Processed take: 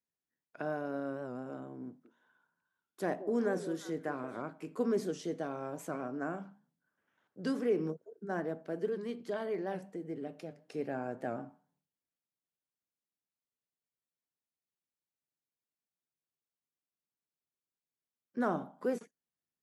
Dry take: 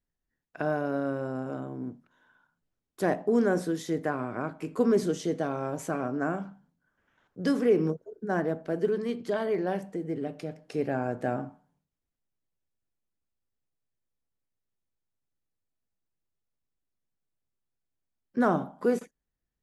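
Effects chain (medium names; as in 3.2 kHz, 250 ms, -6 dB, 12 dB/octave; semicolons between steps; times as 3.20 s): high-pass 150 Hz 12 dB/octave; 1.87–4.42 s: repeats whose band climbs or falls 179 ms, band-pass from 440 Hz, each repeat 1.4 oct, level -8.5 dB; warped record 78 rpm, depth 100 cents; trim -7.5 dB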